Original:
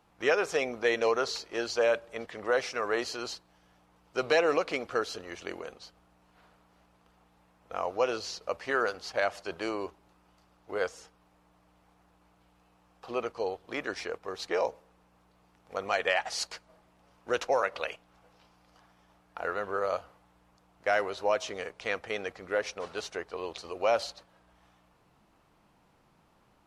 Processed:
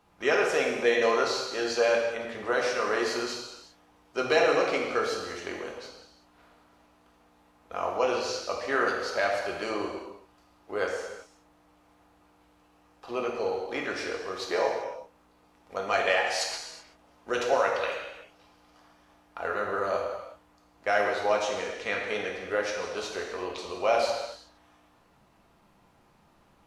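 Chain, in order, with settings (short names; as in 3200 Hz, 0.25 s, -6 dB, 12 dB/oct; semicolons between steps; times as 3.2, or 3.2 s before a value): non-linear reverb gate 0.41 s falling, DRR -1 dB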